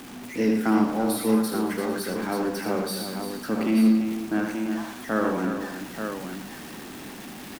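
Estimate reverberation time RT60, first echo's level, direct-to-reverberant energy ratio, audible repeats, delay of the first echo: no reverb audible, −6.0 dB, no reverb audible, 6, 77 ms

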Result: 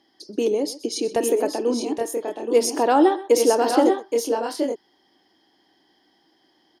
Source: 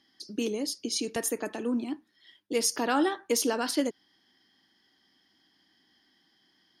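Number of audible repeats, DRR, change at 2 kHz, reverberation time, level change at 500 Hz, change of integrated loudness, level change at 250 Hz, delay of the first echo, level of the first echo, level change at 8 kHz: 2, no reverb audible, +2.5 dB, no reverb audible, +13.0 dB, +8.0 dB, +7.5 dB, 127 ms, −17.0 dB, +2.5 dB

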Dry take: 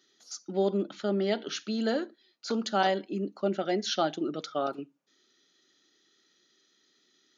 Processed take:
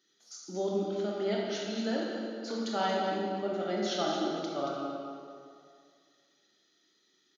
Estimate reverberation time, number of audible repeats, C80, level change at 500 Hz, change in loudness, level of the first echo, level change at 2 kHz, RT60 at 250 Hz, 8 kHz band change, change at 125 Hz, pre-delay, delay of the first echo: 2.1 s, 1, 0.0 dB, −2.0 dB, −2.5 dB, −7.5 dB, −2.5 dB, 2.2 s, can't be measured, −3.5 dB, 21 ms, 229 ms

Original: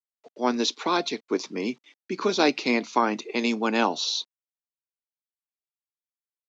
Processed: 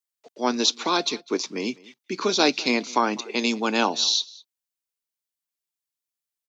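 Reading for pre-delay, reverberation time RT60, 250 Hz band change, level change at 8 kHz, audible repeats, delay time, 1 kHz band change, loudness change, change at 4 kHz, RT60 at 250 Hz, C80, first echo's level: no reverb audible, no reverb audible, 0.0 dB, can't be measured, 1, 202 ms, +1.0 dB, +2.0 dB, +5.5 dB, no reverb audible, no reverb audible, −23.0 dB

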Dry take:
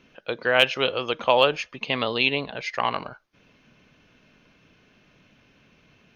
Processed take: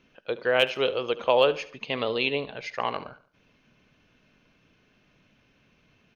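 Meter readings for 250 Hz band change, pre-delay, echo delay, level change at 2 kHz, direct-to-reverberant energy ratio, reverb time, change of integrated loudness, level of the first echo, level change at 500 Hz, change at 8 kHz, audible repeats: −3.0 dB, no reverb audible, 72 ms, −5.0 dB, no reverb audible, no reverb audible, −3.0 dB, −17.0 dB, 0.0 dB, can't be measured, 3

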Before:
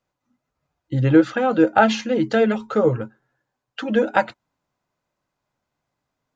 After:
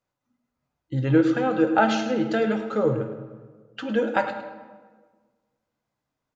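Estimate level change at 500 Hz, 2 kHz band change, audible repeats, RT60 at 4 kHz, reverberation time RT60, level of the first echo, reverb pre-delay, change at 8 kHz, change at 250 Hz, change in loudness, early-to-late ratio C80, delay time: −4.0 dB, −4.0 dB, 1, 0.95 s, 1.5 s, −13.0 dB, 11 ms, can't be measured, −3.5 dB, −4.0 dB, 8.5 dB, 104 ms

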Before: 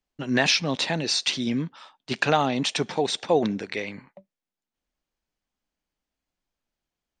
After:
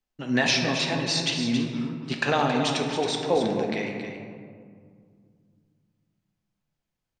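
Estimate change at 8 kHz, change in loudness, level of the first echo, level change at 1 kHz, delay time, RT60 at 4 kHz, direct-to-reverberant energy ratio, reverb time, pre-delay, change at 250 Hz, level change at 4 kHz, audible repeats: −1.5 dB, −0.5 dB, −8.5 dB, −0.5 dB, 273 ms, 0.95 s, 0.5 dB, 2.1 s, 4 ms, +1.0 dB, −1.5 dB, 1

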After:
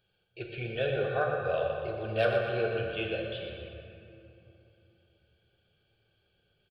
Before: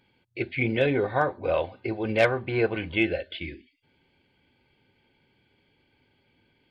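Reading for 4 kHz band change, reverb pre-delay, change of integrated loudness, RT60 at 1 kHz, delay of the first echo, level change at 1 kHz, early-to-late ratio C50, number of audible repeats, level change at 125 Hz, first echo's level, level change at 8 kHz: −3.0 dB, 3 ms, −5.0 dB, 2.9 s, 120 ms, −4.5 dB, 1.0 dB, 2, −4.5 dB, −7.5 dB, can't be measured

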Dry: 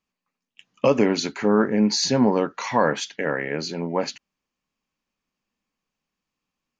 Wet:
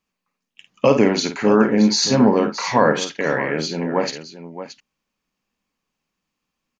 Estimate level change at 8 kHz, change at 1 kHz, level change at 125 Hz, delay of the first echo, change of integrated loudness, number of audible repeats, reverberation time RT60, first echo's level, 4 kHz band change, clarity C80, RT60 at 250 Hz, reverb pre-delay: can't be measured, +4.0 dB, +4.5 dB, 51 ms, +4.5 dB, 2, no reverb audible, −8.5 dB, +4.5 dB, no reverb audible, no reverb audible, no reverb audible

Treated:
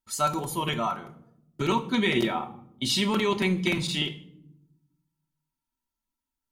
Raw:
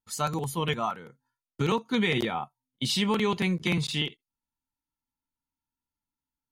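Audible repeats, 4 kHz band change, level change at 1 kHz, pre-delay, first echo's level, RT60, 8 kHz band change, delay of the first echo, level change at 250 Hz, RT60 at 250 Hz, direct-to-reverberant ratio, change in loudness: no echo audible, +2.0 dB, +2.5 dB, 3 ms, no echo audible, 0.75 s, +3.0 dB, no echo audible, +1.5 dB, 1.4 s, 2.5 dB, +1.5 dB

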